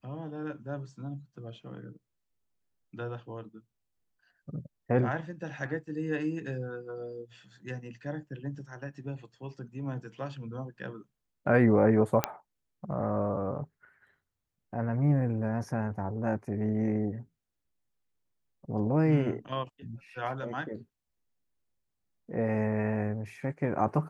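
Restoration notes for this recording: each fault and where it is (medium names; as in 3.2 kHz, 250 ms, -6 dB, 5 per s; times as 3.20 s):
12.24 s: pop -9 dBFS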